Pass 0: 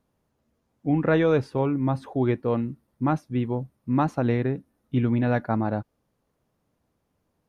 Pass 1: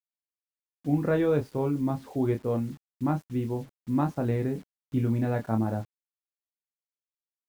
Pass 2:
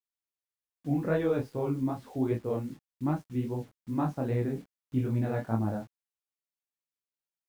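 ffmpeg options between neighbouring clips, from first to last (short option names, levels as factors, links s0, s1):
-filter_complex "[0:a]tiltshelf=f=790:g=3.5,asplit=2[s0][s1];[s1]adelay=27,volume=0.501[s2];[s0][s2]amix=inputs=2:normalize=0,acrusher=bits=7:mix=0:aa=0.000001,volume=0.473"
-af "flanger=delay=16.5:depth=7.1:speed=2.5"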